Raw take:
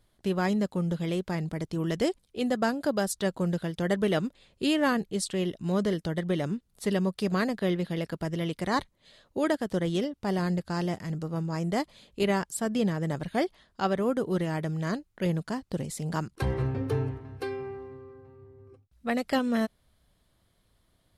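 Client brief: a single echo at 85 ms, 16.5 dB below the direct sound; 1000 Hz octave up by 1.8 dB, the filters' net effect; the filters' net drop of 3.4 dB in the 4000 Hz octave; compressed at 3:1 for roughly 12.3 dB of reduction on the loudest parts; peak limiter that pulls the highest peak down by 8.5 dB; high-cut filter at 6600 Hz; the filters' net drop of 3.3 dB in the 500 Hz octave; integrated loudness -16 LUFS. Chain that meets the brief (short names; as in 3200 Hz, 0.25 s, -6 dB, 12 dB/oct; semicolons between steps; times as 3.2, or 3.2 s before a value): LPF 6600 Hz; bell 500 Hz -5.5 dB; bell 1000 Hz +4.5 dB; bell 4000 Hz -4.5 dB; compressor 3:1, threshold -39 dBFS; limiter -32.5 dBFS; echo 85 ms -16.5 dB; gain +26.5 dB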